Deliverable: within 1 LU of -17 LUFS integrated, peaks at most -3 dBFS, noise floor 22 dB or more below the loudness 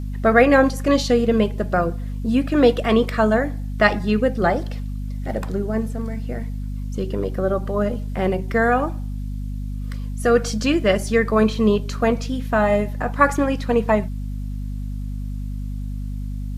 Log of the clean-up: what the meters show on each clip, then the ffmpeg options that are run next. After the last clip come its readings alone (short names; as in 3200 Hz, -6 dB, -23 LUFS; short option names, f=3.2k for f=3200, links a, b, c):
hum 50 Hz; harmonics up to 250 Hz; hum level -25 dBFS; loudness -21.0 LUFS; peak -1.0 dBFS; loudness target -17.0 LUFS
-> -af "bandreject=f=50:t=h:w=6,bandreject=f=100:t=h:w=6,bandreject=f=150:t=h:w=6,bandreject=f=200:t=h:w=6,bandreject=f=250:t=h:w=6"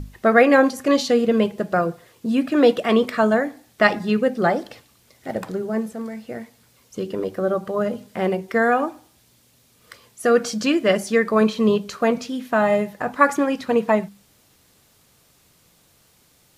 hum none; loudness -20.5 LUFS; peak -1.5 dBFS; loudness target -17.0 LUFS
-> -af "volume=3.5dB,alimiter=limit=-3dB:level=0:latency=1"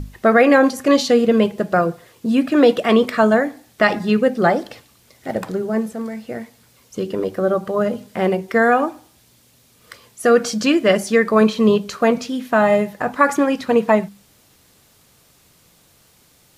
loudness -17.5 LUFS; peak -3.0 dBFS; noise floor -55 dBFS